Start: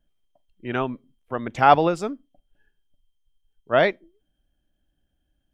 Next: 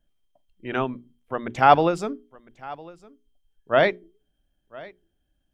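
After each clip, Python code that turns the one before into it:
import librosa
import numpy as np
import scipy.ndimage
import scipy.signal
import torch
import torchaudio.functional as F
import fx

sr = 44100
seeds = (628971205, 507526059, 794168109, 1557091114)

y = fx.hum_notches(x, sr, base_hz=60, count=7)
y = y + 10.0 ** (-21.5 / 20.0) * np.pad(y, (int(1006 * sr / 1000.0), 0))[:len(y)]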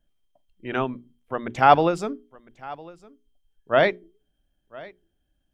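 y = x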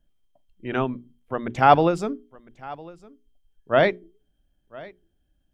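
y = fx.low_shelf(x, sr, hz=370.0, db=5.0)
y = y * 10.0 ** (-1.0 / 20.0)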